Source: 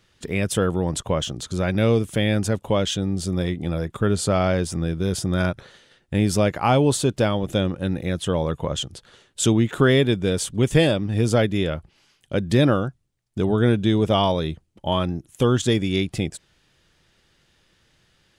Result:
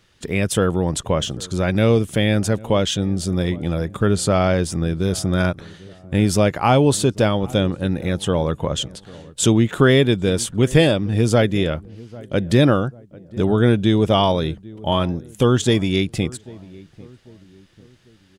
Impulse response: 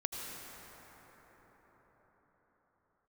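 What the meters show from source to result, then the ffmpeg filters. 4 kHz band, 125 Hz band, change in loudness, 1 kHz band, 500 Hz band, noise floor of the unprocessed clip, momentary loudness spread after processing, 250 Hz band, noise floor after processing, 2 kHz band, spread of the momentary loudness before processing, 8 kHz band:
+3.0 dB, +3.0 dB, +3.0 dB, +3.0 dB, +3.0 dB, -64 dBFS, 10 LU, +3.0 dB, -51 dBFS, +3.0 dB, 9 LU, +3.0 dB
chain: -filter_complex "[0:a]asplit=2[a][b];[b]adelay=795,lowpass=f=920:p=1,volume=-20.5dB,asplit=2[c][d];[d]adelay=795,lowpass=f=920:p=1,volume=0.45,asplit=2[e][f];[f]adelay=795,lowpass=f=920:p=1,volume=0.45[g];[a][c][e][g]amix=inputs=4:normalize=0,volume=3dB"

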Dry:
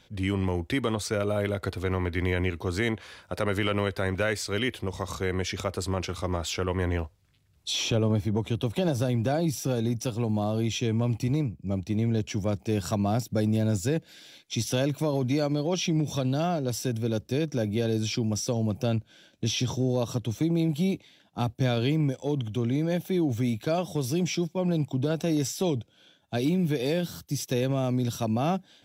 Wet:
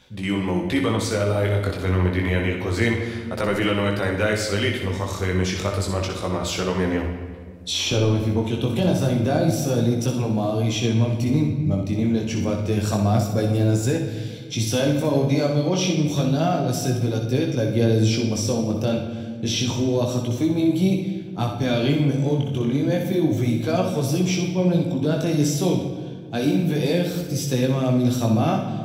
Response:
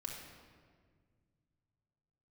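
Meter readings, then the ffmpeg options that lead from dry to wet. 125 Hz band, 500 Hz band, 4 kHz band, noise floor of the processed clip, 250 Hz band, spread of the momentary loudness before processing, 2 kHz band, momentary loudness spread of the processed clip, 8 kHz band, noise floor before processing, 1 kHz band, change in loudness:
+6.0 dB, +5.5 dB, +5.5 dB, -32 dBFS, +6.5 dB, 5 LU, +5.5 dB, 6 LU, +5.0 dB, -62 dBFS, +5.5 dB, +6.0 dB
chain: -filter_complex "[0:a]flanger=delay=15.5:depth=6.9:speed=0.29,asplit=2[a][b];[1:a]atrim=start_sample=2205,adelay=61[c];[b][c]afir=irnorm=-1:irlink=0,volume=-2.5dB[d];[a][d]amix=inputs=2:normalize=0,volume=7dB"

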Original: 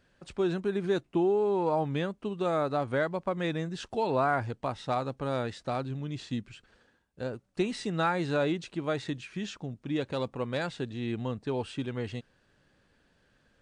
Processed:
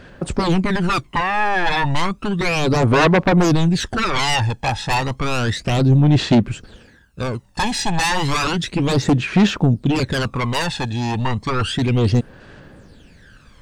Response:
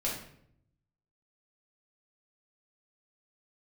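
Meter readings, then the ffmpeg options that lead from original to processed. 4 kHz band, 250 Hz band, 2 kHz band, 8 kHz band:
+18.5 dB, +14.0 dB, +16.0 dB, +21.5 dB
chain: -af "aeval=exprs='0.158*sin(PI/2*5.01*val(0)/0.158)':c=same,aphaser=in_gain=1:out_gain=1:delay=1.2:decay=0.67:speed=0.32:type=sinusoidal,volume=-1.5dB"

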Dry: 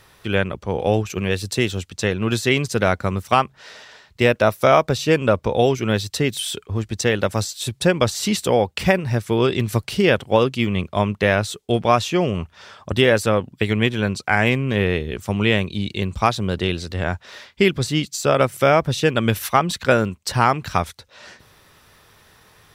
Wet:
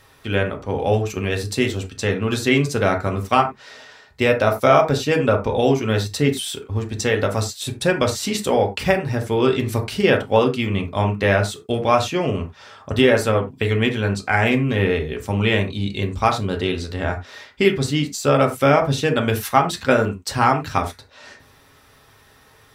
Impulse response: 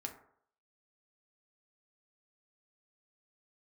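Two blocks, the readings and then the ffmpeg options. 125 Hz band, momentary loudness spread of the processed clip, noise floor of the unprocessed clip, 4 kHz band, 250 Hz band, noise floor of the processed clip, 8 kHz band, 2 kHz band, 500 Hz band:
0.0 dB, 8 LU, -56 dBFS, -1.0 dB, 0.0 dB, -52 dBFS, -1.0 dB, -0.5 dB, +0.5 dB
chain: -filter_complex "[1:a]atrim=start_sample=2205,atrim=end_sample=4410[a];[0:a][a]afir=irnorm=-1:irlink=0,volume=2dB"

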